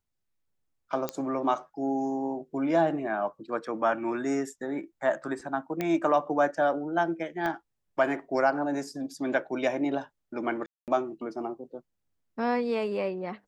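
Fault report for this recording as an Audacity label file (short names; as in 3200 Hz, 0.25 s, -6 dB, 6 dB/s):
1.090000	1.090000	pop -14 dBFS
5.810000	5.810000	pop -16 dBFS
7.460000	7.460000	pop -19 dBFS
10.660000	10.880000	gap 0.218 s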